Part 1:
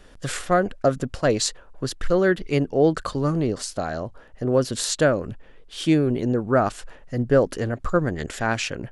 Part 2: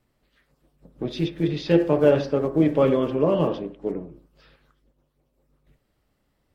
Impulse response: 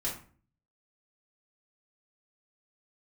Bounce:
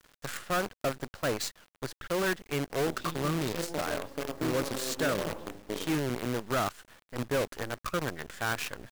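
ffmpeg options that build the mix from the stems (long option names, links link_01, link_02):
-filter_complex "[0:a]highpass=46,equalizer=frequency=1400:width_type=o:width=1.7:gain=9,asoftclip=type=tanh:threshold=-14.5dB,volume=-10.5dB,asplit=2[link_01][link_02];[1:a]bass=frequency=250:gain=-5,treble=frequency=4000:gain=-5,acompressor=threshold=-30dB:ratio=4,adelay=1850,volume=-6dB,asplit=2[link_03][link_04];[link_04]volume=-7dB[link_05];[link_02]apad=whole_len=370200[link_06];[link_03][link_06]sidechaincompress=threshold=-37dB:ratio=4:attack=16:release=332[link_07];[2:a]atrim=start_sample=2205[link_08];[link_05][link_08]afir=irnorm=-1:irlink=0[link_09];[link_01][link_07][link_09]amix=inputs=3:normalize=0,acrusher=bits=6:dc=4:mix=0:aa=0.000001"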